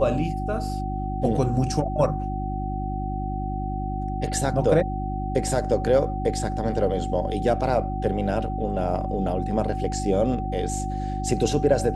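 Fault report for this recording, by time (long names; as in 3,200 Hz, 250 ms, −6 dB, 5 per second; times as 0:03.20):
mains hum 50 Hz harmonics 7 −29 dBFS
whistle 760 Hz −31 dBFS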